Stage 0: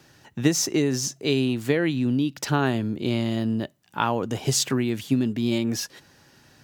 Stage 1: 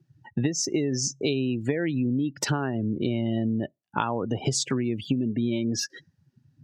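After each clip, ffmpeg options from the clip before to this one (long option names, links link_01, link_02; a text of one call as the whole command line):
ffmpeg -i in.wav -af "acompressor=threshold=-31dB:ratio=8,afftdn=noise_reduction=36:noise_floor=-42,volume=8.5dB" out.wav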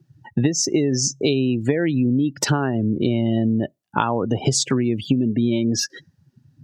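ffmpeg -i in.wav -af "equalizer=frequency=2200:width=1.5:gain=-2.5,volume=6.5dB" out.wav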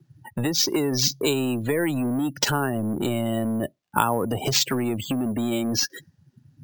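ffmpeg -i in.wav -filter_complex "[0:a]acrossover=split=460|2300[link_01][link_02][link_03];[link_01]asoftclip=type=tanh:threshold=-23.5dB[link_04];[link_04][link_02][link_03]amix=inputs=3:normalize=0,acrusher=samples=4:mix=1:aa=0.000001" out.wav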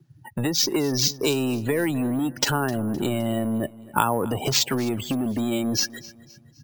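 ffmpeg -i in.wav -af "aecho=1:1:258|516|774:0.1|0.043|0.0185" out.wav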